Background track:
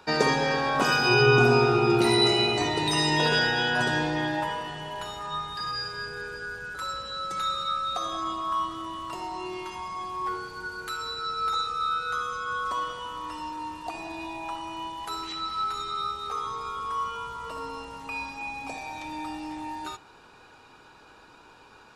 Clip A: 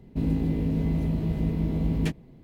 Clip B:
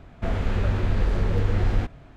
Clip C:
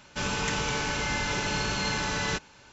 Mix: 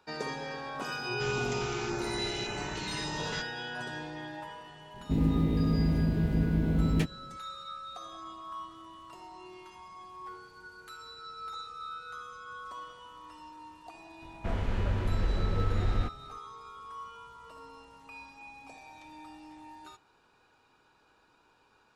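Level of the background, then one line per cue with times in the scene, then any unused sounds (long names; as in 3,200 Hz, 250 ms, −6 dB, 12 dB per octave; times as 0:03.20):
background track −13.5 dB
0:01.04: mix in C −9 dB + notch on a step sequencer 3.5 Hz 380–4,000 Hz
0:04.94: mix in A −1 dB
0:14.22: mix in B −6.5 dB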